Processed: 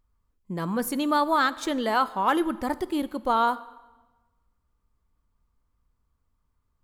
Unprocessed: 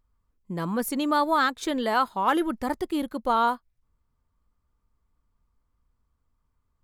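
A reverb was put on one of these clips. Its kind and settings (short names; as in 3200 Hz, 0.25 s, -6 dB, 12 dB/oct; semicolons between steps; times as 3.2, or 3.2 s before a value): plate-style reverb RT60 1.2 s, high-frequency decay 0.85×, DRR 16 dB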